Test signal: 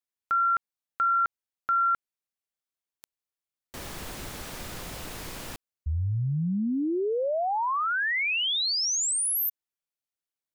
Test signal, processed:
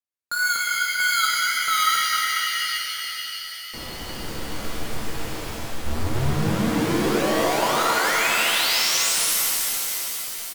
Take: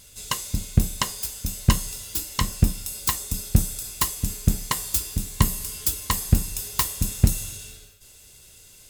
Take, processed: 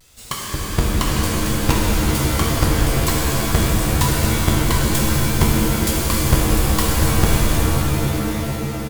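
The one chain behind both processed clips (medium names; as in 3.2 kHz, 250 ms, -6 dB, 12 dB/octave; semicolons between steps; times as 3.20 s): square wave that keeps the level; frequency-shifting echo 411 ms, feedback 54%, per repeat +110 Hz, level -16 dB; wow and flutter 130 cents; in parallel at -8 dB: crossover distortion -41 dBFS; on the sum: pitch-shifted reverb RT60 3.8 s, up +7 st, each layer -2 dB, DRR -3.5 dB; trim -7.5 dB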